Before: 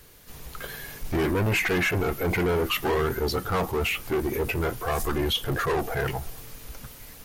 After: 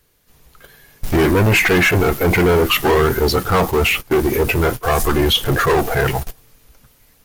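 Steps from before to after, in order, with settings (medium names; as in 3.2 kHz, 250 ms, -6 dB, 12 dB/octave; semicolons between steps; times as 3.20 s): gate -32 dBFS, range -15 dB; in parallel at -5 dB: bit crusher 6-bit; on the sum: trim +6.5 dB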